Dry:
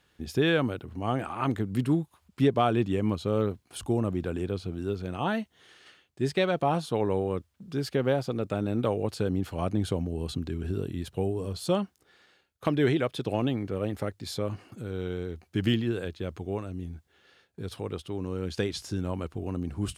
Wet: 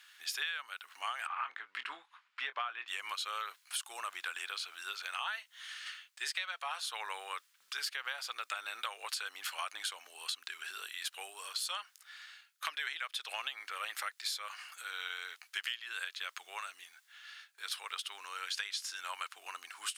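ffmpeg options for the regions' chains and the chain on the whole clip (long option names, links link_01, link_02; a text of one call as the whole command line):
ffmpeg -i in.wav -filter_complex "[0:a]asettb=1/sr,asplit=3[link_01][link_02][link_03];[link_01]atrim=end=1.274[link_04];[link_02]atrim=start=1.27:end=2.88,asetpts=PTS-STARTPTS,afade=type=in:duration=0.004:curve=qsin,afade=type=out:start_time=1.606:duration=0.004:curve=qsin,lowpass=2400,asplit=2[link_05][link_06];[link_06]adelay=24,volume=-12dB[link_07];[link_05][link_07]amix=inputs=2:normalize=0,atrim=end_sample=71001[link_08];[link_03]atrim=start=2.876[link_09];[link_04][link_08]acrossfade=duration=0.004:curve1=hsin:curve2=qsin[link_10];[link_10][link_09]acrossfade=duration=0.004:curve1=qsin:curve2=hsin,highpass=frequency=1300:width=0.5412,highpass=frequency=1300:width=1.3066,acompressor=threshold=-45dB:ratio=10,volume=10.5dB" out.wav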